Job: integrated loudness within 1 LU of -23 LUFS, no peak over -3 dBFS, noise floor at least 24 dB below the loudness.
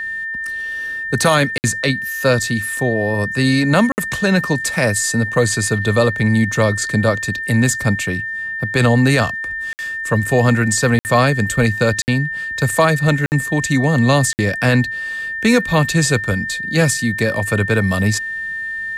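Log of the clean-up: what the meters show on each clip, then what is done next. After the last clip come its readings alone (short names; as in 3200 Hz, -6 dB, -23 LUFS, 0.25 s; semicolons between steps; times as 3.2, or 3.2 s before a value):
dropouts 7; longest dropout 59 ms; steady tone 1800 Hz; tone level -22 dBFS; loudness -17.0 LUFS; peak -2.0 dBFS; loudness target -23.0 LUFS
-> interpolate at 1.58/3.92/9.73/10.99/12.02/13.26/14.33, 59 ms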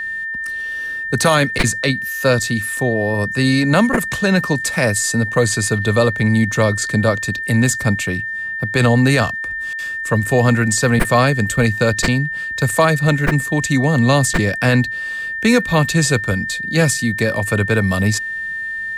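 dropouts 0; steady tone 1800 Hz; tone level -22 dBFS
-> notch 1800 Hz, Q 30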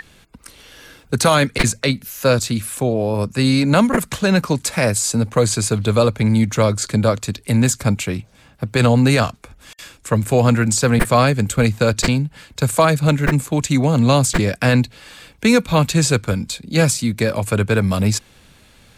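steady tone none; loudness -17.5 LUFS; peak -2.0 dBFS; loudness target -23.0 LUFS
-> gain -5.5 dB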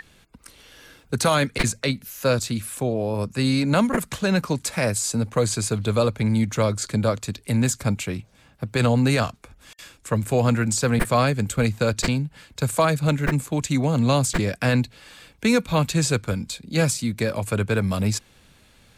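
loudness -23.0 LUFS; peak -7.5 dBFS; noise floor -56 dBFS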